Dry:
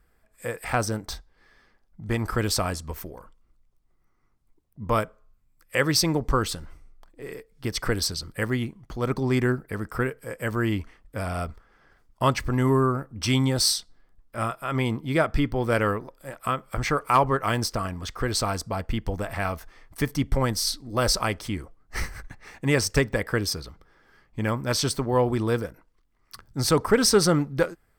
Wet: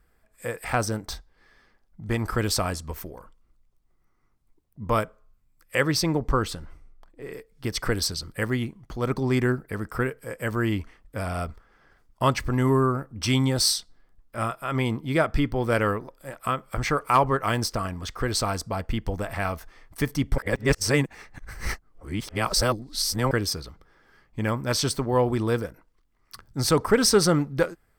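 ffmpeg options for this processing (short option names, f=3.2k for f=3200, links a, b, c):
-filter_complex "[0:a]asettb=1/sr,asplit=3[a][b][c];[a]atrim=end=5.834[d];[b]atrim=start=5.83:end=7.34,asetpts=PTS-STARTPTS,afade=t=in:d=0.004:c=qsin,afade=t=out:st=1.506:d=0.004:c=qsin,highshelf=f=3.7k:g=-6[e];[c]atrim=start=7.336[f];[d][e]acrossfade=d=0.004:c1=hsin:c2=qsin[g];[g][f]acrossfade=d=0.004:c1=qsin:c2=hsin,asplit=3[h][i][j];[h]atrim=end=20.382[k];[i]atrim=start=20.378:end=23.312,asetpts=PTS-STARTPTS,areverse[l];[j]atrim=start=23.308[m];[k][l]acrossfade=d=0.004:c1=hsin:c2=hsin[n];[n][m]acrossfade=d=0.004:c1=hsin:c2=hsin"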